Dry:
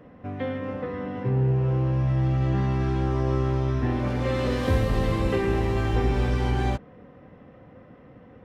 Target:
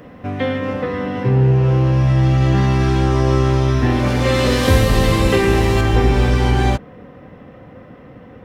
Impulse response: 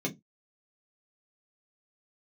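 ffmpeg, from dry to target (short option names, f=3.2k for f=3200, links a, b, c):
-af "asetnsamples=n=441:p=0,asendcmd='5.81 highshelf g 4.5',highshelf=f=2.9k:g=11,volume=9dB"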